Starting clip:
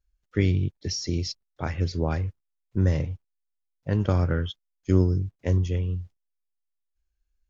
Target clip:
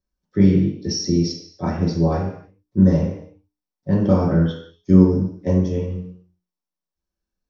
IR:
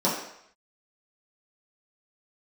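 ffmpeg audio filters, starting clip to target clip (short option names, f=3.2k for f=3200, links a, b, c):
-filter_complex "[0:a]lowshelf=f=280:g=4.5,bandreject=f=60:t=h:w=6,bandreject=f=120:t=h:w=6,bandreject=f=180:t=h:w=6,bandreject=f=240:t=h:w=6,bandreject=f=300:t=h:w=6,bandreject=f=360:t=h:w=6,bandreject=f=420:t=h:w=6[a];[1:a]atrim=start_sample=2205,afade=t=out:st=0.38:d=0.01,atrim=end_sample=17199[b];[a][b]afir=irnorm=-1:irlink=0,volume=-10.5dB"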